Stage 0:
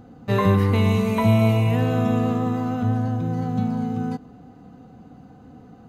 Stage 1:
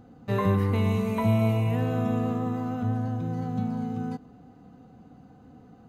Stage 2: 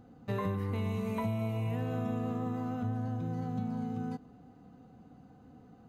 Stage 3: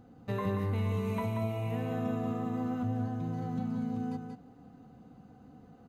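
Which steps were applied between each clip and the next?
dynamic equaliser 4,200 Hz, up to −4 dB, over −42 dBFS, Q 0.72; level −5.5 dB
downward compressor, threshold −25 dBFS, peak gain reduction 7.5 dB; level −4.5 dB
single-tap delay 183 ms −5.5 dB

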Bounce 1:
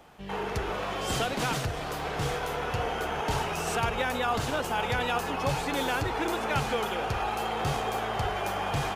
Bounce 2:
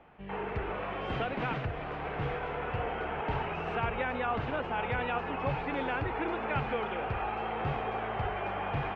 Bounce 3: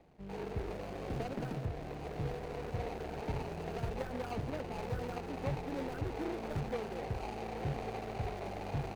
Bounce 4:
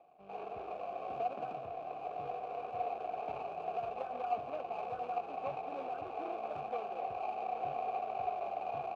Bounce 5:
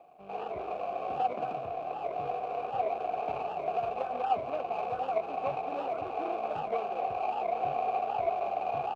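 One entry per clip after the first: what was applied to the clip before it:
Chebyshev low-pass filter 2,500 Hz, order 3; level −3 dB
running median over 41 samples; level −2 dB
formant filter a; level +10.5 dB
wow of a warped record 78 rpm, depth 160 cents; level +6.5 dB

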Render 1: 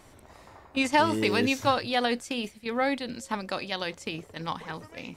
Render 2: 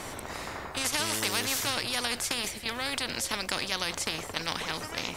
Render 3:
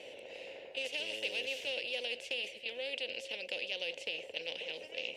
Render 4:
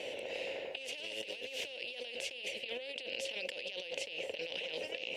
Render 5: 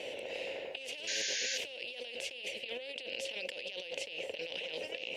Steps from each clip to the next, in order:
every bin compressed towards the loudest bin 4 to 1
pair of resonant band-passes 1,200 Hz, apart 2.4 octaves; level +2 dB
compressor whose output falls as the input rises −45 dBFS, ratio −1; level +3 dB
sound drawn into the spectrogram noise, 0:01.07–0:01.58, 1,500–7,100 Hz −36 dBFS

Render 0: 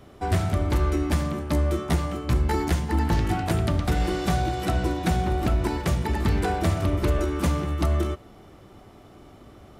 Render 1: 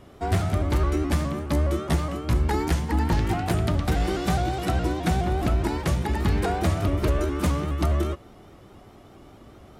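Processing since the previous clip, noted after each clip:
pitch modulation by a square or saw wave saw up 4.8 Hz, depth 100 cents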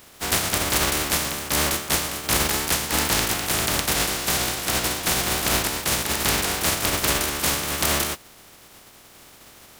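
compressing power law on the bin magnitudes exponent 0.26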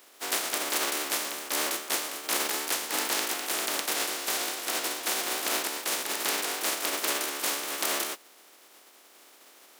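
high-pass filter 290 Hz 24 dB per octave
level −6.5 dB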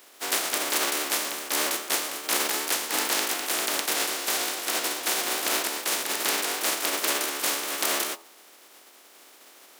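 hum removal 83.75 Hz, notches 16
level +3 dB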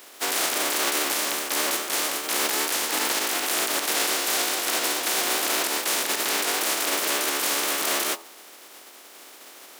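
brickwall limiter −20 dBFS, peak gain reduction 10.5 dB
level +6 dB

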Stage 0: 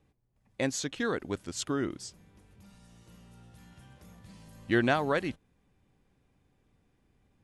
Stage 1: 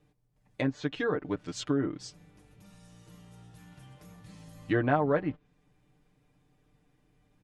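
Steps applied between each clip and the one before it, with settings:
treble cut that deepens with the level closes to 1,300 Hz, closed at −27 dBFS
comb filter 6.7 ms, depth 75%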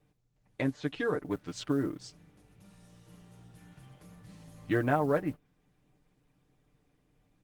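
noise that follows the level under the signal 31 dB
level −1 dB
Opus 20 kbit/s 48,000 Hz

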